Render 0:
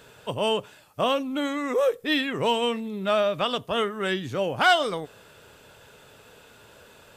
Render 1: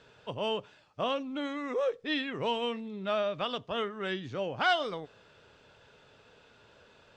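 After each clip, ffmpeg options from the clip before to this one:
-af "lowpass=f=5.8k:w=0.5412,lowpass=f=5.8k:w=1.3066,volume=-7.5dB"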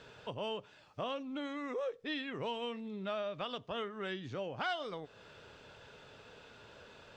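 -af "acompressor=threshold=-48dB:ratio=2,volume=3.5dB"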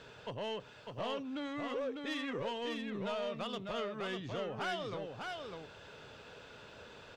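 -filter_complex "[0:a]asoftclip=type=tanh:threshold=-34dB,asplit=2[a][b];[b]aecho=0:1:600:0.596[c];[a][c]amix=inputs=2:normalize=0,volume=1.5dB"

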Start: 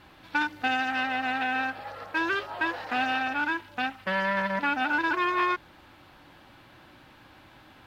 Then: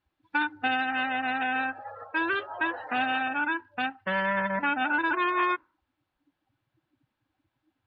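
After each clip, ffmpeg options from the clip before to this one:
-af "afftdn=nr=29:nf=-38"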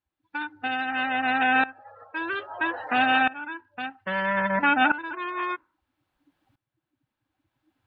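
-af "aeval=exprs='val(0)*pow(10,-18*if(lt(mod(-0.61*n/s,1),2*abs(-0.61)/1000),1-mod(-0.61*n/s,1)/(2*abs(-0.61)/1000),(mod(-0.61*n/s,1)-2*abs(-0.61)/1000)/(1-2*abs(-0.61)/1000))/20)':c=same,volume=8.5dB"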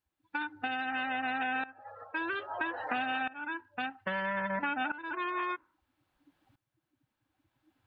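-af "acompressor=threshold=-31dB:ratio=6"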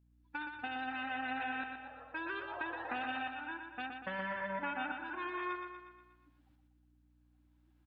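-af "aeval=exprs='val(0)+0.000891*(sin(2*PI*60*n/s)+sin(2*PI*2*60*n/s)/2+sin(2*PI*3*60*n/s)/3+sin(2*PI*4*60*n/s)/4+sin(2*PI*5*60*n/s)/5)':c=same,aecho=1:1:120|240|360|480|600|720|840:0.501|0.266|0.141|0.0746|0.0395|0.021|0.0111,volume=-6.5dB"

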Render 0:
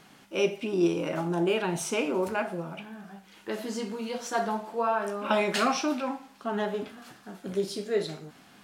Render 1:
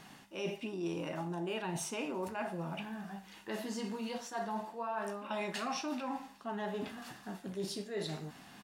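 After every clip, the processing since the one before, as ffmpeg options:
-af "aecho=1:1:1.1:0.3,areverse,acompressor=threshold=-36dB:ratio=5,areverse"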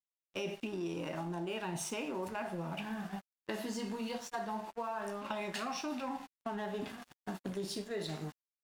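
-af "agate=range=-14dB:threshold=-45dB:ratio=16:detection=peak,aeval=exprs='sgn(val(0))*max(abs(val(0))-0.00158,0)':c=same,acompressor=threshold=-43dB:ratio=6,volume=7.5dB"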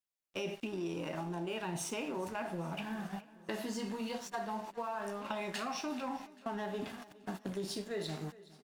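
-af "aecho=1:1:414|828|1242|1656|2070:0.1|0.057|0.0325|0.0185|0.0106"

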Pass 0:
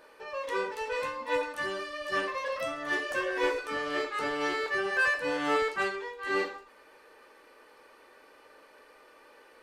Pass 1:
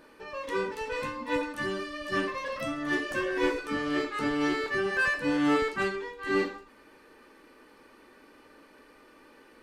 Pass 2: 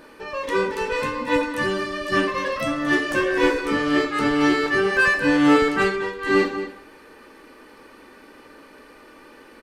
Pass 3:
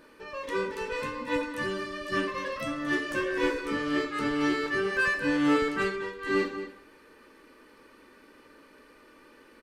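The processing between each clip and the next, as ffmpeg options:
-af "lowshelf=f=370:t=q:w=1.5:g=9.5"
-filter_complex "[0:a]asplit=2[a][b];[b]adelay=221.6,volume=-11dB,highshelf=f=4k:g=-4.99[c];[a][c]amix=inputs=2:normalize=0,volume=8.5dB"
-af "equalizer=f=760:w=5.1:g=-7.5,volume=-8dB"

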